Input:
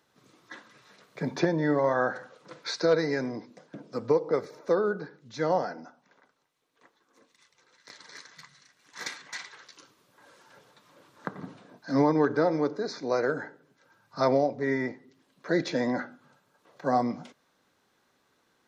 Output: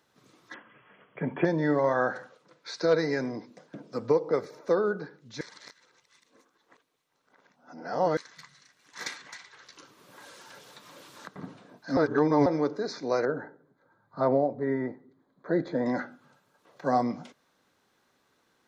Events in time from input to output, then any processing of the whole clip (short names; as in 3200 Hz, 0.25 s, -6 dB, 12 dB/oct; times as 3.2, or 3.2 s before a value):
0.54–1.45 brick-wall FIR low-pass 3400 Hz
2.2–2.92 dip -13 dB, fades 0.32 s
5.41–8.17 reverse
9.24–11.36 three-band squash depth 100%
11.97–12.46 reverse
13.25–15.86 running mean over 16 samples